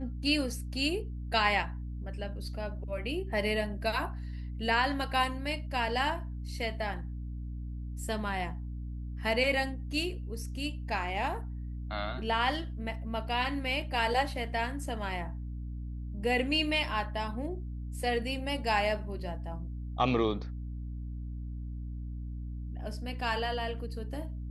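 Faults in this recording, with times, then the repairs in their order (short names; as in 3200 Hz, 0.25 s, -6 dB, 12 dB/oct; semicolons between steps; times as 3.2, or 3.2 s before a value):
hum 60 Hz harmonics 5 -38 dBFS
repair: de-hum 60 Hz, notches 5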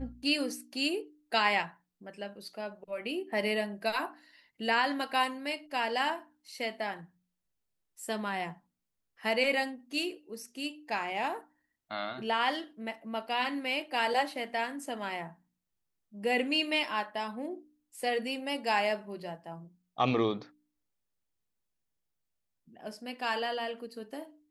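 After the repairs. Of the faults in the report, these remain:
none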